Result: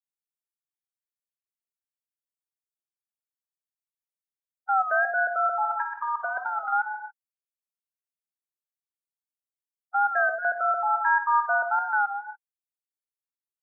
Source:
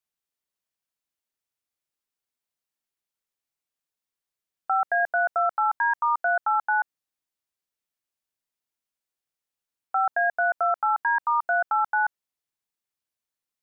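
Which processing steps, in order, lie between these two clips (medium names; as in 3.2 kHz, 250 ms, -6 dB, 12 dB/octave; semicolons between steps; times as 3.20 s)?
expander on every frequency bin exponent 3; 5.65–6.73 s: compressor with a negative ratio -29 dBFS, ratio -1; square tremolo 0.67 Hz, depth 65%, duty 90%; gated-style reverb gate 300 ms flat, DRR 5 dB; warped record 33 1/3 rpm, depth 100 cents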